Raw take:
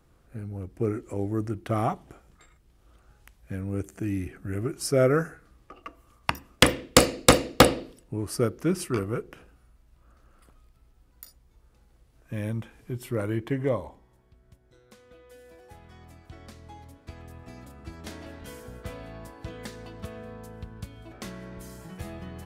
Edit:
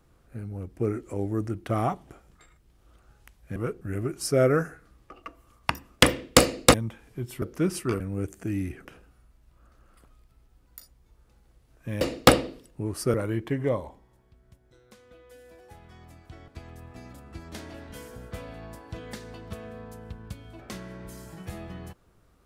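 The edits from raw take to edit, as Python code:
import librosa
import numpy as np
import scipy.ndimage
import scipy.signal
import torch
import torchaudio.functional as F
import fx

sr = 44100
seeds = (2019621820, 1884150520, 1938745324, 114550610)

y = fx.edit(x, sr, fx.swap(start_s=3.56, length_s=0.85, other_s=9.05, other_length_s=0.25),
    fx.swap(start_s=7.34, length_s=1.13, other_s=12.46, other_length_s=0.68),
    fx.cut(start_s=16.48, length_s=0.52), tone=tone)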